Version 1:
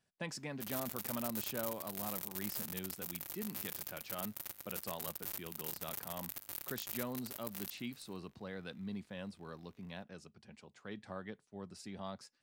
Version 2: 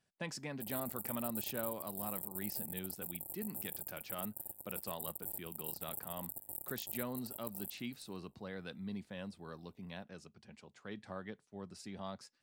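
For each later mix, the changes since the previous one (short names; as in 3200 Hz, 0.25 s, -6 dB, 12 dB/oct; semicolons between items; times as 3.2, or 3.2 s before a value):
background: add brick-wall FIR band-stop 960–7400 Hz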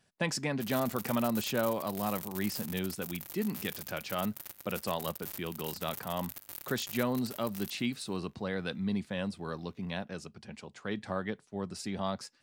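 speech +10.5 dB; background: remove brick-wall FIR band-stop 960–7400 Hz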